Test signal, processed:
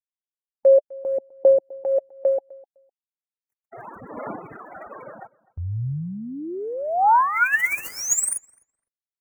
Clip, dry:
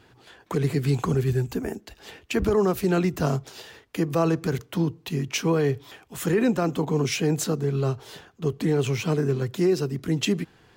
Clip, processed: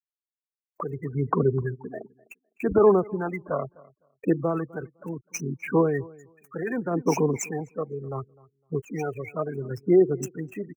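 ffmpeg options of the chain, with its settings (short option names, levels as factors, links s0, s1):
-filter_complex "[0:a]acrossover=split=6400[s0][s1];[s1]acompressor=threshold=0.00562:ratio=4:attack=1:release=60[s2];[s0][s2]amix=inputs=2:normalize=0,highpass=f=510:p=1,acrossover=split=2600[s3][s4];[s3]adelay=290[s5];[s5][s4]amix=inputs=2:normalize=0,afftfilt=real='re*gte(hypot(re,im),0.0398)':imag='im*gte(hypot(re,im),0.0398)':win_size=1024:overlap=0.75,highshelf=f=5800:g=7.5,aphaser=in_gain=1:out_gain=1:delay=1.8:decay=0.64:speed=0.7:type=sinusoidal,acrossover=split=2700[s6][s7];[s7]acrusher=bits=3:mode=log:mix=0:aa=0.000001[s8];[s6][s8]amix=inputs=2:normalize=0,agate=range=0.447:threshold=0.00447:ratio=16:detection=peak,asuperstop=centerf=3800:order=8:qfactor=1,asplit=2[s9][s10];[s10]adelay=254,lowpass=f=2800:p=1,volume=0.0708,asplit=2[s11][s12];[s12]adelay=254,lowpass=f=2800:p=1,volume=0.17[s13];[s11][s13]amix=inputs=2:normalize=0[s14];[s9][s14]amix=inputs=2:normalize=0"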